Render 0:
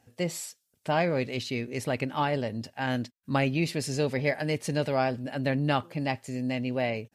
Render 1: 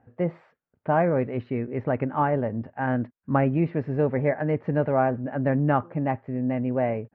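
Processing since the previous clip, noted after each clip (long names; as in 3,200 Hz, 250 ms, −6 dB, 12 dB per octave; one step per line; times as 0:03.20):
low-pass filter 1,600 Hz 24 dB per octave
level +4.5 dB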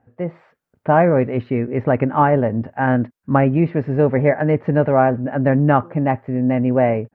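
automatic gain control gain up to 9.5 dB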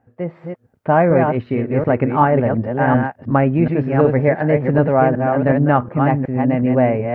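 delay that plays each chunk backwards 368 ms, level −4.5 dB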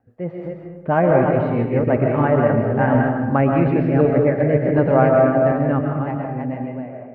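fade-out on the ending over 2.08 s
rotating-speaker cabinet horn 6 Hz, later 0.7 Hz, at 0:02.18
convolution reverb RT60 1.1 s, pre-delay 90 ms, DRR 2 dB
level −1 dB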